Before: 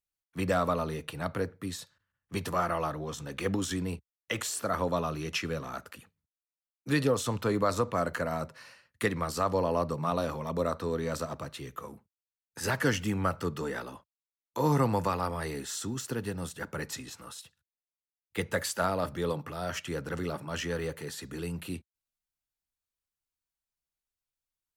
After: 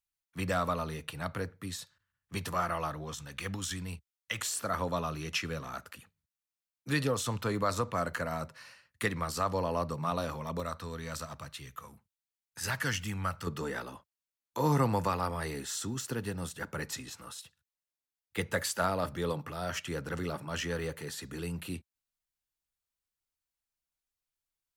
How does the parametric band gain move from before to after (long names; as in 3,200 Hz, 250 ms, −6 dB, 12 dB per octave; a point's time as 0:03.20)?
parametric band 380 Hz 2.1 octaves
−6.5 dB
from 0:03.15 −14 dB
from 0:04.41 −5.5 dB
from 0:10.60 −13.5 dB
from 0:13.47 −2.5 dB